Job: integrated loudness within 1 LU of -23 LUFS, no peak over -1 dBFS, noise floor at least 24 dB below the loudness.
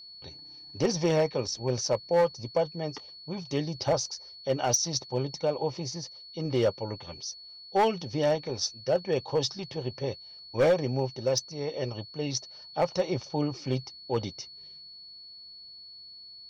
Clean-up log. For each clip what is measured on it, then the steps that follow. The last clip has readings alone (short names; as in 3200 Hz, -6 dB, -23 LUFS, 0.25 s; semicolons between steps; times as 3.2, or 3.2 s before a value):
clipped 0.5%; flat tops at -17.5 dBFS; steady tone 4400 Hz; tone level -45 dBFS; loudness -30.0 LUFS; peak -17.5 dBFS; loudness target -23.0 LUFS
-> clip repair -17.5 dBFS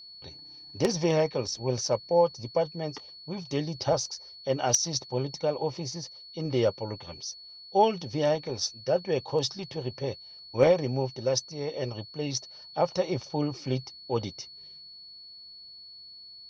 clipped 0.0%; steady tone 4400 Hz; tone level -45 dBFS
-> notch 4400 Hz, Q 30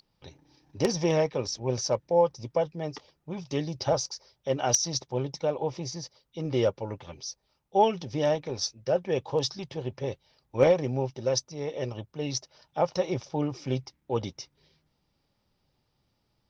steady tone none; loudness -29.0 LUFS; peak -8.5 dBFS; loudness target -23.0 LUFS
-> gain +6 dB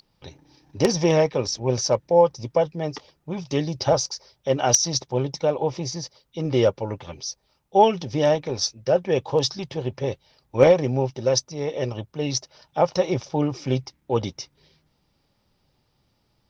loudness -23.5 LUFS; peak -2.5 dBFS; noise floor -69 dBFS